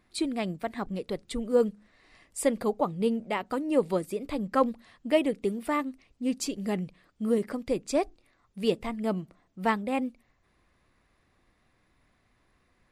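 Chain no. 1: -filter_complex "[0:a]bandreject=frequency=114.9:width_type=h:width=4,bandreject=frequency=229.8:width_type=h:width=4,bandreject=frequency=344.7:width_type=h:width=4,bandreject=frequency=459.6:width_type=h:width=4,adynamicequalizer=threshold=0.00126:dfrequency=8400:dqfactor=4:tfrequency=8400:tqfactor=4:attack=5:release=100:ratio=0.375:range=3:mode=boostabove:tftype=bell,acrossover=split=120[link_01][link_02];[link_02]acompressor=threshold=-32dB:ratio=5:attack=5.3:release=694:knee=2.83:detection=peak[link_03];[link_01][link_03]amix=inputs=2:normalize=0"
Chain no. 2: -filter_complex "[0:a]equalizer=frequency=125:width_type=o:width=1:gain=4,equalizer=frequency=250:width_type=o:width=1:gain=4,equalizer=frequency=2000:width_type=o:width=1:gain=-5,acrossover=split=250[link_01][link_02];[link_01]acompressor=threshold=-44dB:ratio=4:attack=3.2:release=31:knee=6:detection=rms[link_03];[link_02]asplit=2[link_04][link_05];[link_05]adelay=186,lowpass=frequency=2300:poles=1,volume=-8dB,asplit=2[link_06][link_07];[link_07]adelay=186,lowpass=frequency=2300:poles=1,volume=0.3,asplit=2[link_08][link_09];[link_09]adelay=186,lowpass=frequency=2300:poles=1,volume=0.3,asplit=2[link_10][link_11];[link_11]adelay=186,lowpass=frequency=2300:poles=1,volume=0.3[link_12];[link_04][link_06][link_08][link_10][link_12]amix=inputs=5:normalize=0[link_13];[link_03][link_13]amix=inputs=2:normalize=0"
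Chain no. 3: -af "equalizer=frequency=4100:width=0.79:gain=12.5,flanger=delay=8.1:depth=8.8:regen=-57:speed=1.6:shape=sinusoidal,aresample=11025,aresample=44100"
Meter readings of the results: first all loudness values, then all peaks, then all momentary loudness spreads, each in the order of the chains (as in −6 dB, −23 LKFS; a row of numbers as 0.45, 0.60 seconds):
−39.0, −29.5, −32.5 LKFS; −22.5, −11.0, −12.0 dBFS; 8, 10, 8 LU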